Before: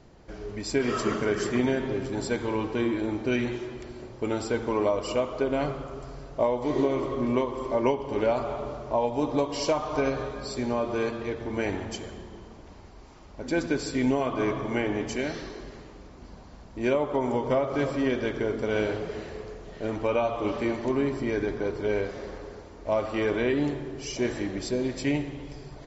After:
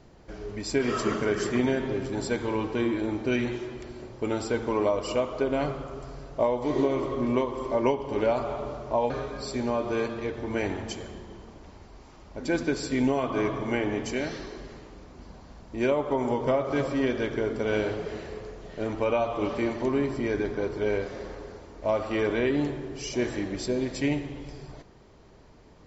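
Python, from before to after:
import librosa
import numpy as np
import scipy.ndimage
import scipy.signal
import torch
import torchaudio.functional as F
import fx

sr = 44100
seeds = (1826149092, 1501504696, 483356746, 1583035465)

y = fx.edit(x, sr, fx.cut(start_s=9.1, length_s=1.03), tone=tone)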